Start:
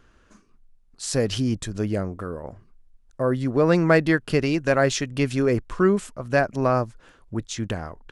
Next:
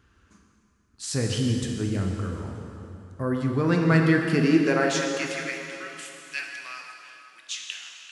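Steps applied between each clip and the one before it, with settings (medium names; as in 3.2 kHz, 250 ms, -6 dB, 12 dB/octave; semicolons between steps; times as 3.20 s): peaking EQ 590 Hz -10 dB 0.73 oct; high-pass sweep 71 Hz -> 2.7 kHz, 3.85–5.61 s; plate-style reverb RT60 3 s, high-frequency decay 0.85×, DRR 0.5 dB; trim -3.5 dB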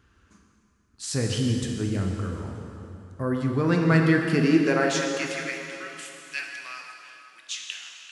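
no audible change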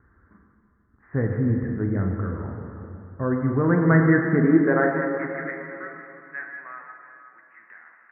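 steep low-pass 2 kHz 96 dB/octave; trim +2.5 dB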